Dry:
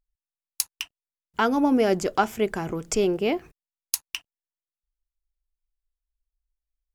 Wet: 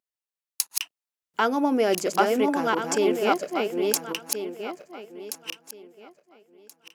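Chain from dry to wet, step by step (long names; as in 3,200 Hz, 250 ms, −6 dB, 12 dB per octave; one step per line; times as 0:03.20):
feedback delay that plays each chunk backwards 689 ms, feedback 43%, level −2 dB
high-pass filter 280 Hz 12 dB per octave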